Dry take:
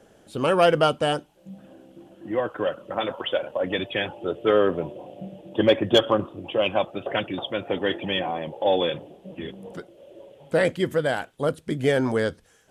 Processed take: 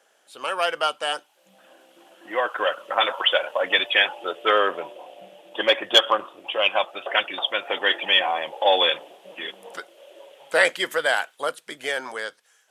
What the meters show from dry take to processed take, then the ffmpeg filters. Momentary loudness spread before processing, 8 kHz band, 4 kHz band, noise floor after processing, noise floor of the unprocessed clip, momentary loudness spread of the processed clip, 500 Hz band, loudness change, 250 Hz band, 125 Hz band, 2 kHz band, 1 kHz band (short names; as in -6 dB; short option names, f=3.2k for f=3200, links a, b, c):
17 LU, n/a, +8.5 dB, -62 dBFS, -57 dBFS, 15 LU, -3.0 dB, +2.0 dB, -12.5 dB, under -20 dB, +8.0 dB, +3.5 dB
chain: -af "highpass=960,dynaudnorm=f=130:g=21:m=12dB"